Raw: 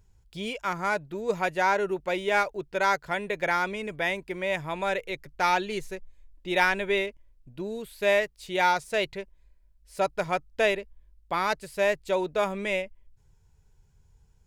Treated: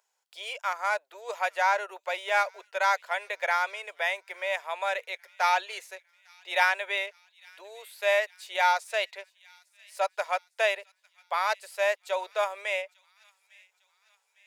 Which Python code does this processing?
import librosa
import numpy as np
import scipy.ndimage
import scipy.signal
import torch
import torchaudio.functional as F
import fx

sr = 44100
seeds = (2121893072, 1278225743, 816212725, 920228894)

y = scipy.signal.sosfilt(scipy.signal.butter(6, 570.0, 'highpass', fs=sr, output='sos'), x)
y = fx.echo_wet_highpass(y, sr, ms=854, feedback_pct=50, hz=2500.0, wet_db=-22)